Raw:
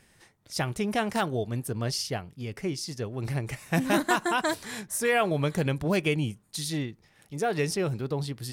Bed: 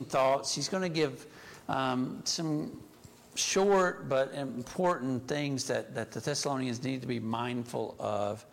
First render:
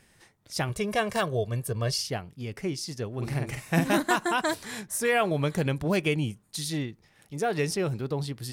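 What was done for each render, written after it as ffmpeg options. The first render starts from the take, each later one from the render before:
-filter_complex "[0:a]asettb=1/sr,asplit=3[a][b][c];[a]atrim=end=0.694[d];[b]atrim=start=0.69:end=2,asetpts=PTS-STARTPTS,afade=t=in:d=0.004:c=qsin,afade=t=out:st=1.306:d=0.004:c=qsin,aecho=1:1:1.8:0.64,atrim=end_sample=57771[e];[c]atrim=start=1.996[f];[d][e]acrossfade=d=0.004:c1=hsin:c2=qsin[g];[g][f]acrossfade=d=0.004:c1=qsin:c2=hsin,asettb=1/sr,asplit=3[h][i][j];[h]atrim=end=3.134[k];[i]atrim=start=3.13:end=3.88,asetpts=PTS-STARTPTS,afade=t=in:d=0.004:c=qsin,afade=t=out:st=0.746:d=0.004:c=qsin,asplit=2[l][m];[m]adelay=48,volume=-4dB[n];[l][n]amix=inputs=2:normalize=0,atrim=end_sample=33075[o];[j]atrim=start=3.876[p];[k][o]acrossfade=d=0.004:c1=hsin:c2=qsin[q];[q][p]acrossfade=d=0.004:c1=qsin:c2=hsin"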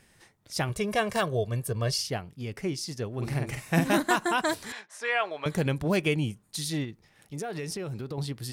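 -filter_complex "[0:a]asettb=1/sr,asplit=3[a][b][c];[a]atrim=end=4.724[d];[b]atrim=start=4.72:end=5.46,asetpts=PTS-STARTPTS,afade=t=in:d=0.004:c=qsin,afade=t=out:st=0.736:d=0.004:c=qsin,highpass=750,lowpass=3.9k[e];[c]atrim=start=5.456[f];[d][e]acrossfade=d=0.004:c1=hsin:c2=qsin[g];[g][f]acrossfade=d=0.004:c1=qsin:c2=hsin,asettb=1/sr,asplit=3[h][i][j];[h]atrim=end=6.844[k];[i]atrim=start=6.84:end=8.18,asetpts=PTS-STARTPTS,afade=t=in:d=0.004:c=qsin,afade=t=out:st=1.336:d=0.004:c=qsin,acompressor=threshold=-31dB:ratio=6:attack=3.2:release=140:knee=1:detection=peak[l];[j]atrim=start=8.176[m];[k][l]acrossfade=d=0.004:c1=hsin:c2=qsin[n];[n][m]acrossfade=d=0.004:c1=qsin:c2=hsin"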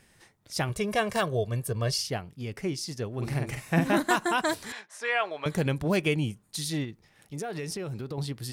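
-filter_complex "[0:a]asettb=1/sr,asplit=3[a][b][c];[a]atrim=end=3.544[d];[b]atrim=start=3.54:end=3.97,asetpts=PTS-STARTPTS,afade=t=in:d=0.004:c=qsin,afade=t=out:st=0.426:d=0.004:c=qsin,acrossover=split=3200[e][f];[f]acompressor=threshold=-43dB:ratio=4:attack=1:release=60[g];[e][g]amix=inputs=2:normalize=0[h];[c]atrim=start=3.966[i];[d][h]acrossfade=d=0.004:c1=hsin:c2=qsin[j];[j][i]acrossfade=d=0.004:c1=qsin:c2=hsin"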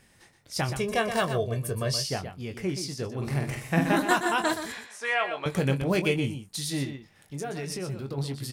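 -filter_complex "[0:a]asplit=2[a][b];[b]adelay=22,volume=-8.5dB[c];[a][c]amix=inputs=2:normalize=0,aecho=1:1:123:0.355"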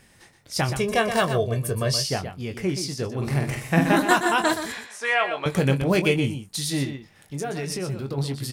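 -af "volume=4.5dB"

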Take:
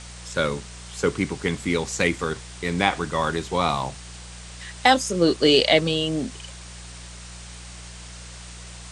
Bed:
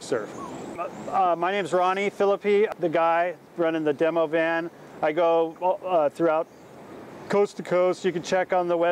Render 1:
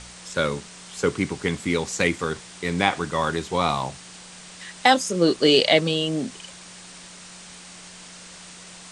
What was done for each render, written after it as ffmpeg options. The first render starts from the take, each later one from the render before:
-af "bandreject=f=60:t=h:w=4,bandreject=f=120:t=h:w=4"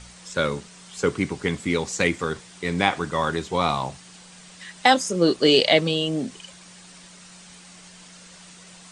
-af "afftdn=nr=6:nf=-44"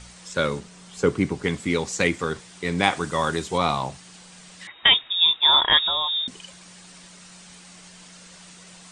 -filter_complex "[0:a]asettb=1/sr,asplit=3[a][b][c];[a]atrim=end=0.594[d];[b]atrim=start=0.59:end=1.44,asetpts=PTS-STARTPTS,afade=t=in:d=0.004:c=qsin,afade=t=out:st=0.846:d=0.004:c=qsin,tiltshelf=f=970:g=3[e];[c]atrim=start=1.436[f];[d][e]acrossfade=d=0.004:c1=hsin:c2=qsin[g];[g][f]acrossfade=d=0.004:c1=qsin:c2=hsin,asettb=1/sr,asplit=3[h][i][j];[h]atrim=end=2.834[k];[i]atrim=start=2.83:end=3.58,asetpts=PTS-STARTPTS,afade=t=in:d=0.004:c=qsin,afade=t=out:st=0.746:d=0.004:c=qsin,highshelf=f=7.5k:g=11[l];[j]atrim=start=3.576[m];[k][l]acrossfade=d=0.004:c1=hsin:c2=qsin[n];[n][m]acrossfade=d=0.004:c1=qsin:c2=hsin,asettb=1/sr,asplit=3[o][p][q];[o]atrim=end=4.674[r];[p]atrim=start=4.67:end=6.28,asetpts=PTS-STARTPTS,afade=t=in:d=0.004:c=qsin,afade=t=out:st=1.606:d=0.004:c=qsin,lowpass=f=3.3k:t=q:w=0.5098,lowpass=f=3.3k:t=q:w=0.6013,lowpass=f=3.3k:t=q:w=0.9,lowpass=f=3.3k:t=q:w=2.563,afreqshift=-3900[s];[q]atrim=start=6.276[t];[r][s]acrossfade=d=0.004:c1=hsin:c2=qsin[u];[u][t]acrossfade=d=0.004:c1=qsin:c2=hsin"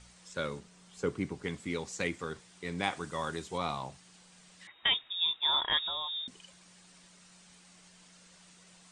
-af "volume=-12dB"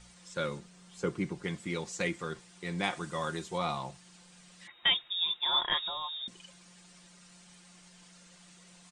-af "aecho=1:1:5.7:0.51"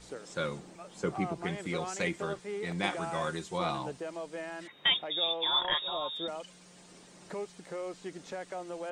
-filter_complex "[1:a]volume=-17dB[a];[0:a][a]amix=inputs=2:normalize=0"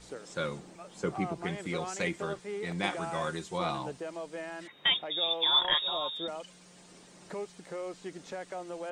-filter_complex "[0:a]asettb=1/sr,asplit=3[a][b][c];[a]atrim=end=5.314[d];[b]atrim=start=5.31:end=6.1,asetpts=PTS-STARTPTS,afade=t=in:d=0.004:c=qsin,afade=t=out:st=0.786:d=0.004:c=qsin,highshelf=f=3.5k:g=8[e];[c]atrim=start=6.096[f];[d][e]acrossfade=d=0.004:c1=hsin:c2=qsin[g];[g][f]acrossfade=d=0.004:c1=qsin:c2=hsin"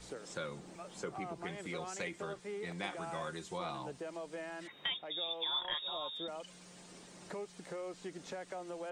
-filter_complex "[0:a]acrossover=split=340[a][b];[a]alimiter=level_in=12dB:limit=-24dB:level=0:latency=1,volume=-12dB[c];[c][b]amix=inputs=2:normalize=0,acompressor=threshold=-43dB:ratio=2"

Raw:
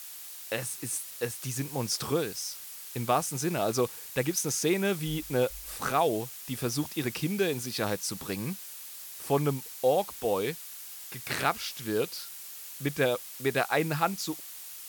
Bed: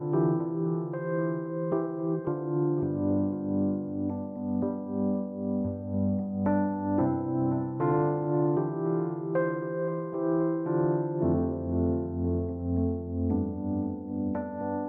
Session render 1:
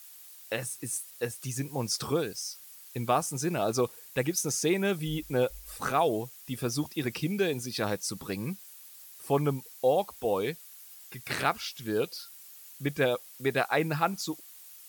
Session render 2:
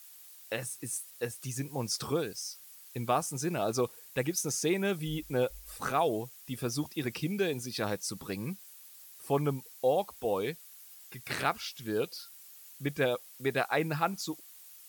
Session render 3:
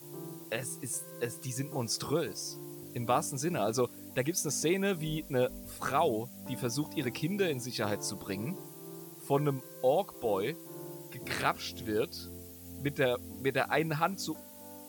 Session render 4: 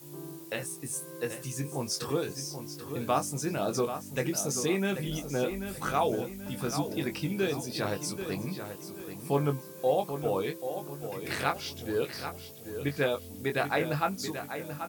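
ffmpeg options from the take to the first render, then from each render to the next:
-af "afftdn=nr=9:nf=-44"
-af "volume=-2.5dB"
-filter_complex "[1:a]volume=-19dB[a];[0:a][a]amix=inputs=2:normalize=0"
-filter_complex "[0:a]asplit=2[a][b];[b]adelay=21,volume=-7dB[c];[a][c]amix=inputs=2:normalize=0,asplit=2[d][e];[e]adelay=785,lowpass=f=4.8k:p=1,volume=-9dB,asplit=2[f][g];[g]adelay=785,lowpass=f=4.8k:p=1,volume=0.38,asplit=2[h][i];[i]adelay=785,lowpass=f=4.8k:p=1,volume=0.38,asplit=2[j][k];[k]adelay=785,lowpass=f=4.8k:p=1,volume=0.38[l];[d][f][h][j][l]amix=inputs=5:normalize=0"

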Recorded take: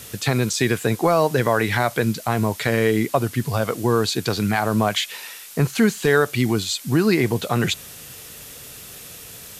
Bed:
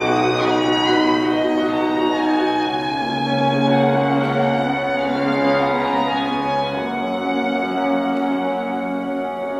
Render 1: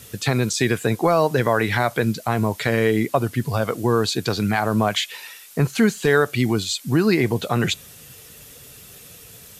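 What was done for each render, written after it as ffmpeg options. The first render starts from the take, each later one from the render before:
-af "afftdn=nr=6:nf=-40"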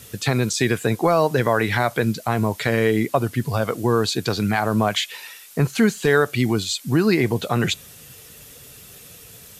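-af anull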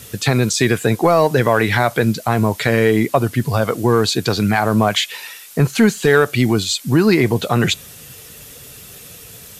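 -af "acontrast=30"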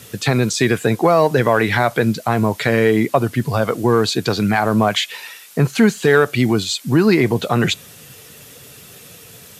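-af "highpass=100,highshelf=f=5.2k:g=-4.5"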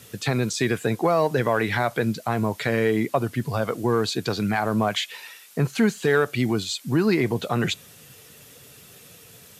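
-af "volume=-7dB"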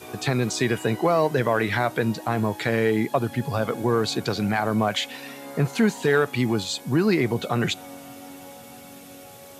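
-filter_complex "[1:a]volume=-22.5dB[a];[0:a][a]amix=inputs=2:normalize=0"

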